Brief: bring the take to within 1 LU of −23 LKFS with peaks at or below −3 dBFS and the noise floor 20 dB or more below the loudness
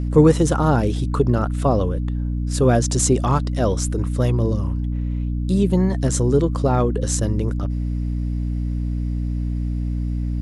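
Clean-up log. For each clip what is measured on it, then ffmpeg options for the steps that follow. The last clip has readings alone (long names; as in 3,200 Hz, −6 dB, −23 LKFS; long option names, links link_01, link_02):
mains hum 60 Hz; hum harmonics up to 300 Hz; level of the hum −20 dBFS; integrated loudness −21.0 LKFS; sample peak −2.0 dBFS; target loudness −23.0 LKFS
→ -af "bandreject=frequency=60:width_type=h:width=6,bandreject=frequency=120:width_type=h:width=6,bandreject=frequency=180:width_type=h:width=6,bandreject=frequency=240:width_type=h:width=6,bandreject=frequency=300:width_type=h:width=6"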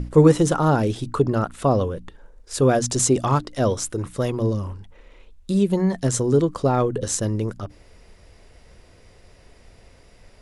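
mains hum none found; integrated loudness −21.5 LKFS; sample peak −2.5 dBFS; target loudness −23.0 LKFS
→ -af "volume=-1.5dB"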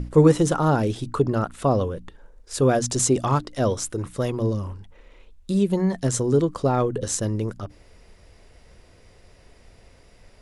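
integrated loudness −23.0 LKFS; sample peak −4.0 dBFS; background noise floor −53 dBFS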